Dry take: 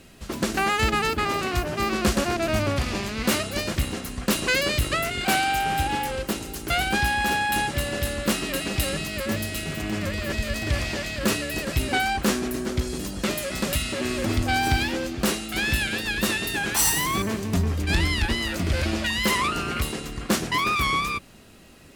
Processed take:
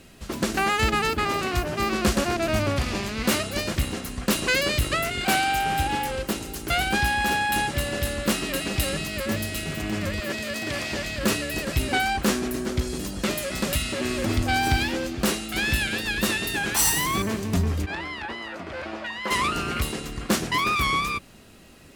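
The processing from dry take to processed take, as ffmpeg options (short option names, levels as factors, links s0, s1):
-filter_complex "[0:a]asettb=1/sr,asplit=3[s0][s1][s2];[s0]atrim=end=10.204[s3];[s1]atrim=start=10.2:end=10.92,asetpts=PTS-STARTPTS,afade=t=in:d=0.004:c=qsin,afade=t=out:st=0.716:d=0.004:c=qsin,highpass=180[s4];[s2]atrim=start=10.916[s5];[s3][s4]acrossfade=d=0.004:c1=hsin:c2=qsin[s6];[s6][s5]acrossfade=d=0.004:c1=qsin:c2=hsin,asplit=3[s7][s8][s9];[s7]afade=t=out:st=17.85:d=0.02[s10];[s8]bandpass=f=910:t=q:w=1,afade=t=in:st=17.85:d=0.02,afade=t=out:st=19.3:d=0.02[s11];[s9]afade=t=in:st=19.3:d=0.02[s12];[s10][s11][s12]amix=inputs=3:normalize=0"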